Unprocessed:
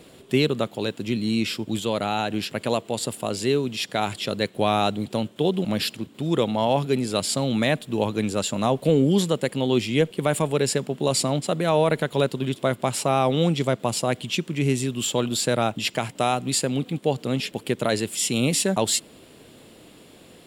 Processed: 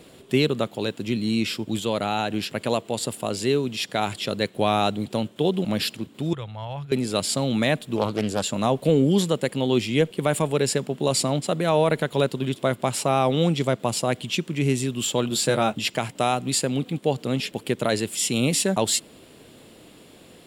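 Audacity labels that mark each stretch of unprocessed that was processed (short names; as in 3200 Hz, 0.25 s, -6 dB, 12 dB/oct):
6.330000	6.920000	EQ curve 120 Hz 0 dB, 240 Hz -24 dB, 1500 Hz -7 dB, 8300 Hz -18 dB
7.960000	8.520000	Doppler distortion depth 0.34 ms
15.290000	15.790000	doubler 14 ms -6 dB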